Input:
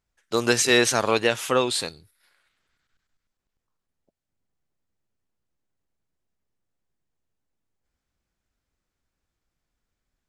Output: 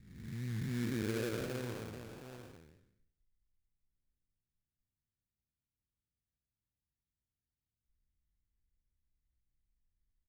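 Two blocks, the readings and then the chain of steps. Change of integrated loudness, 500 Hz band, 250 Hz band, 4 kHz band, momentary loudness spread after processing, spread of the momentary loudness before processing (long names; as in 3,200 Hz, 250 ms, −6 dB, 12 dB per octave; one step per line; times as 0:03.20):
−18.0 dB, −19.0 dB, −11.0 dB, −25.0 dB, 15 LU, 10 LU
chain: spectrum smeared in time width 456 ms
single-tap delay 716 ms −8 dB
low-pass that shuts in the quiet parts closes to 680 Hz, open at −26 dBFS
guitar amp tone stack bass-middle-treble 10-0-1
low-pass filter sweep 170 Hz → 5,500 Hz, 0:00.61–0:02.72
sample-rate reduction 2,000 Hz, jitter 20%
wow of a warped record 78 rpm, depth 100 cents
level +8 dB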